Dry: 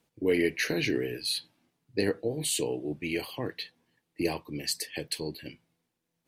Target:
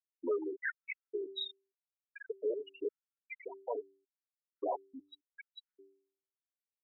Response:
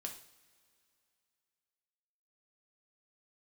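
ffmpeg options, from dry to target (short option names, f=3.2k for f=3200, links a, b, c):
-filter_complex "[0:a]acrossover=split=110|1500[a][b][c];[b]asoftclip=type=tanh:threshold=-31dB[d];[a][d][c]amix=inputs=3:normalize=0,acrossover=split=470 3300:gain=0.0891 1 0.0631[e][f][g];[e][f][g]amix=inputs=3:normalize=0,asetrate=40517,aresample=44100,acompressor=threshold=-37dB:ratio=2,equalizer=f=125:t=o:w=1:g=-7,equalizer=f=2k:t=o:w=1:g=-9,equalizer=f=8k:t=o:w=1:g=-10,afftfilt=real='re*gte(hypot(re,im),0.0282)':imag='im*gte(hypot(re,im),0.0282)':win_size=1024:overlap=0.75,bandreject=f=2.8k:w=14,bandreject=f=97.29:t=h:w=4,bandreject=f=194.58:t=h:w=4,bandreject=f=291.87:t=h:w=4,bandreject=f=389.16:t=h:w=4,afftfilt=real='re*gt(sin(2*PI*0.86*pts/sr)*(1-2*mod(floor(b*sr/1024/1300),2)),0)':imag='im*gt(sin(2*PI*0.86*pts/sr)*(1-2*mod(floor(b*sr/1024/1300),2)),0)':win_size=1024:overlap=0.75,volume=11dB"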